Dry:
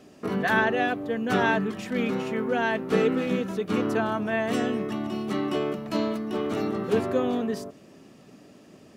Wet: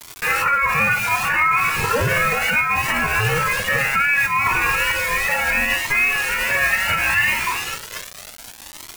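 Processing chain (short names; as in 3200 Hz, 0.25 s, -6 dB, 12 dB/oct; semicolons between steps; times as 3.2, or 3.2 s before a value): shoebox room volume 2200 m³, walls furnished, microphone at 2.7 m; in parallel at -11.5 dB: soft clip -13 dBFS, distortion -20 dB; on the sum: HPF 780 Hz 24 dB/oct; echo 0.779 s -16 dB; inverted band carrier 2600 Hz; pitch shift +4.5 st; crackle 420/s -38 dBFS; vibrato 2.5 Hz 37 cents; bit-crush 7-bit; maximiser +26 dB; cascading flanger rising 0.68 Hz; gain -5 dB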